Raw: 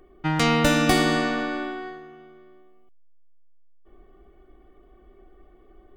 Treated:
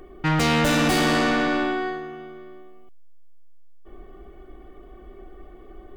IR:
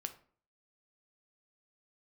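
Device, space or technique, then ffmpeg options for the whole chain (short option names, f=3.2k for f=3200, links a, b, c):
saturation between pre-emphasis and de-emphasis: -af "highshelf=f=5k:g=9,asoftclip=type=tanh:threshold=-26dB,highshelf=f=5k:g=-9,volume=9dB"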